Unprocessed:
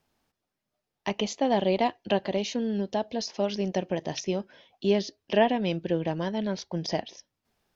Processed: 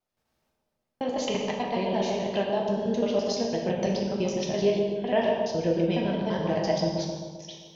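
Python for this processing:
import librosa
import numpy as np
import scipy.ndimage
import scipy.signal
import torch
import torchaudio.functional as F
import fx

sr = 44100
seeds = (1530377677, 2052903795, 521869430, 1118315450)

p1 = fx.block_reorder(x, sr, ms=84.0, group=6)
p2 = fx.rider(p1, sr, range_db=10, speed_s=0.5)
p3 = p2 + fx.echo_bbd(p2, sr, ms=131, stages=1024, feedback_pct=59, wet_db=-5, dry=0)
p4 = fx.rev_gated(p3, sr, seeds[0], gate_ms=380, shape='falling', drr_db=-1.0)
y = p4 * 10.0 ** (-3.5 / 20.0)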